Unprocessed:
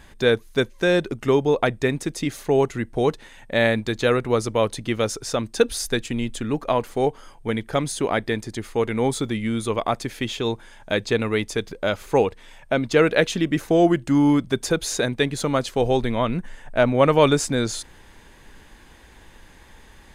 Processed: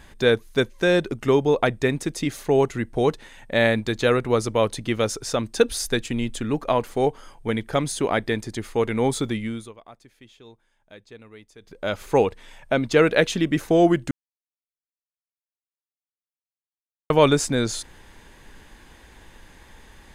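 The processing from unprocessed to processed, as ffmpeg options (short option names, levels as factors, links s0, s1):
-filter_complex "[0:a]asplit=5[s0][s1][s2][s3][s4];[s0]atrim=end=9.73,asetpts=PTS-STARTPTS,afade=t=out:st=9.3:d=0.43:silence=0.0707946[s5];[s1]atrim=start=9.73:end=11.6,asetpts=PTS-STARTPTS,volume=0.0708[s6];[s2]atrim=start=11.6:end=14.11,asetpts=PTS-STARTPTS,afade=t=in:d=0.43:silence=0.0707946,afade=t=out:st=2.506:d=0.004:c=hsin[s7];[s3]atrim=start=14.11:end=17.1,asetpts=PTS-STARTPTS,volume=0[s8];[s4]atrim=start=17.1,asetpts=PTS-STARTPTS,afade=t=in:d=0.004:c=hsin[s9];[s5][s6][s7][s8][s9]concat=n=5:v=0:a=1"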